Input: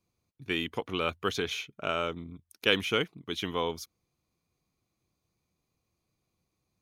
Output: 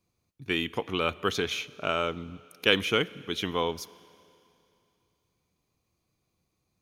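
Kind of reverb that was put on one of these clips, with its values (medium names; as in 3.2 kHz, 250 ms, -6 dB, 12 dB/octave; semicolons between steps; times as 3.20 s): Schroeder reverb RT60 2.8 s, combs from 29 ms, DRR 19.5 dB; trim +2.5 dB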